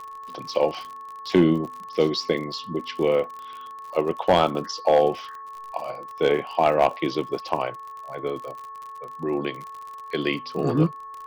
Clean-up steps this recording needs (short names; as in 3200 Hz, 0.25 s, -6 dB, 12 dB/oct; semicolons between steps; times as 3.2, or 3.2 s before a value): clip repair -9 dBFS; de-click; de-hum 438.6 Hz, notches 4; notch 1100 Hz, Q 30